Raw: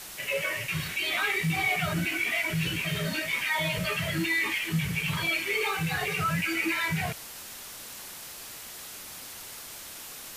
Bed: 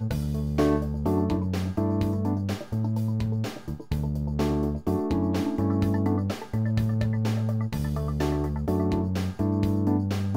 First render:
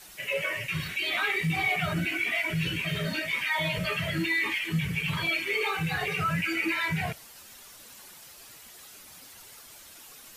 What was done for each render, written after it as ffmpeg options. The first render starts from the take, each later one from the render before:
ffmpeg -i in.wav -af "afftdn=noise_reduction=9:noise_floor=-43" out.wav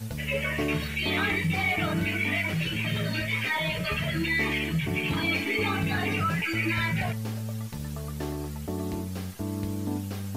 ffmpeg -i in.wav -i bed.wav -filter_complex "[1:a]volume=-7dB[link_01];[0:a][link_01]amix=inputs=2:normalize=0" out.wav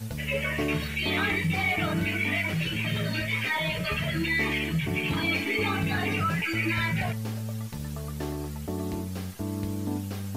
ffmpeg -i in.wav -af anull out.wav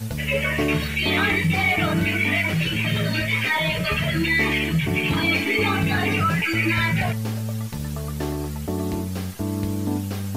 ffmpeg -i in.wav -af "volume=6dB" out.wav

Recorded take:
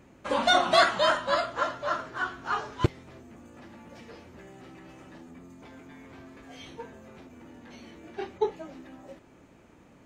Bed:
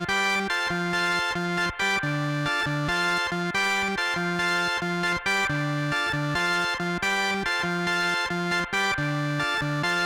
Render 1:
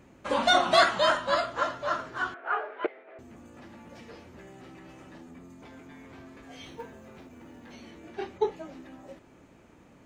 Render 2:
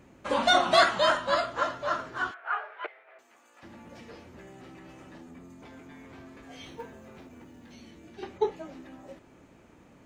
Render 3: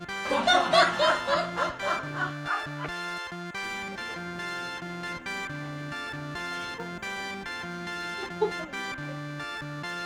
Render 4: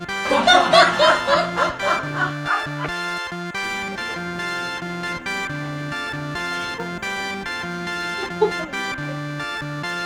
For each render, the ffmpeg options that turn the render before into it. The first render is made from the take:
ffmpeg -i in.wav -filter_complex "[0:a]asettb=1/sr,asplit=3[link_01][link_02][link_03];[link_01]atrim=end=2.344[link_04];[link_02]atrim=start=2.34:end=3.19,asetpts=PTS-STARTPTS,afade=type=in:duration=0.004:curve=qsin,afade=type=out:start_time=0.846:duration=0.004:curve=qsin,highpass=frequency=400:width=0.5412,highpass=frequency=400:width=1.3066,equalizer=frequency=440:width_type=q:width=4:gain=4,equalizer=frequency=660:width_type=q:width=4:gain=8,equalizer=frequency=1000:width_type=q:width=4:gain=-6,equalizer=frequency=1500:width_type=q:width=4:gain=3,equalizer=frequency=2200:width_type=q:width=4:gain=3,lowpass=frequency=2400:width=0.5412,lowpass=frequency=2400:width=1.3066[link_05];[link_03]atrim=start=3.186[link_06];[link_04][link_05]acrossfade=duration=0.004:curve1=hsin:curve2=qsin[link_07];[link_07][link_06]acrossfade=duration=0.004:curve1=qsin:curve2=hsin,asettb=1/sr,asplit=3[link_08][link_09][link_10];[link_08]atrim=end=6.634[link_11];[link_09]atrim=start=6.63:end=7.73,asetpts=PTS-STARTPTS,afade=type=in:duration=0.004:curve=qsin,afade=type=out:start_time=1.096:duration=0.004:curve=qsin,acrusher=bits=8:mode=log:mix=0:aa=0.000001[link_12];[link_10]atrim=start=7.726[link_13];[link_11][link_12]acrossfade=duration=0.004:curve1=hsin:curve2=qsin[link_14];[link_14][link_13]acrossfade=duration=0.004:curve1=qsin:curve2=hsin" out.wav
ffmpeg -i in.wav -filter_complex "[0:a]asettb=1/sr,asplit=3[link_01][link_02][link_03];[link_01]atrim=end=2.314[link_04];[link_02]atrim=start=2.31:end=3.63,asetpts=PTS-STARTPTS,afade=type=in:duration=0.004:curve=qsin,afade=type=out:start_time=1.316:duration=0.004:curve=qsin,highpass=890[link_05];[link_03]atrim=start=3.626[link_06];[link_04][link_05]acrossfade=duration=0.004:curve1=hsin:curve2=qsin[link_07];[link_07][link_06]acrossfade=duration=0.004:curve1=qsin:curve2=hsin,asettb=1/sr,asplit=3[link_08][link_09][link_10];[link_08]atrim=end=7.444[link_11];[link_09]atrim=start=7.44:end=8.23,asetpts=PTS-STARTPTS,afade=type=in:duration=0.004:curve=qsin,afade=type=out:start_time=0.786:duration=0.004:curve=qsin,acrossover=split=290|3000[link_12][link_13][link_14];[link_13]acompressor=threshold=-57dB:ratio=2.5:attack=3.2:release=140:knee=2.83:detection=peak[link_15];[link_12][link_15][link_14]amix=inputs=3:normalize=0[link_16];[link_10]atrim=start=8.226[link_17];[link_11][link_16]acrossfade=duration=0.004:curve1=hsin:curve2=qsin[link_18];[link_18][link_17]acrossfade=duration=0.004:curve1=qsin:curve2=hsin" out.wav
ffmpeg -i in.wav -i bed.wav -filter_complex "[1:a]volume=-10dB[link_01];[0:a][link_01]amix=inputs=2:normalize=0" out.wav
ffmpeg -i in.wav -af "volume=8.5dB,alimiter=limit=-1dB:level=0:latency=1" out.wav

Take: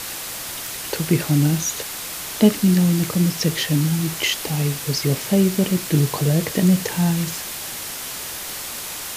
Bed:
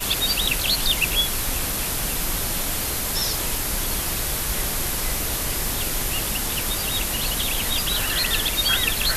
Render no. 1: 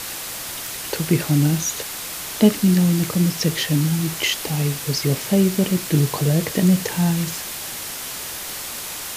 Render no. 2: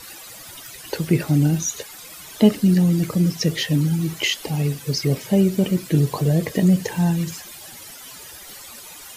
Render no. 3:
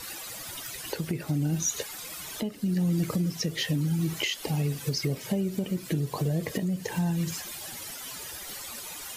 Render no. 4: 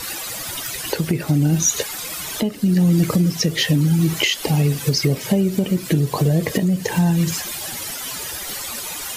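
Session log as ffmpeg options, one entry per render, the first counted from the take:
ffmpeg -i in.wav -af anull out.wav
ffmpeg -i in.wav -af "afftdn=noise_reduction=14:noise_floor=-31" out.wav
ffmpeg -i in.wav -af "acompressor=threshold=-23dB:ratio=5,alimiter=limit=-17.5dB:level=0:latency=1:release=497" out.wav
ffmpeg -i in.wav -af "volume=10.5dB" out.wav

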